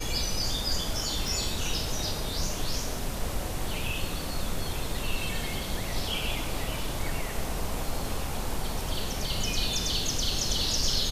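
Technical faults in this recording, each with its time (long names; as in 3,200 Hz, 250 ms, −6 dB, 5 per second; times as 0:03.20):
0:01.28: click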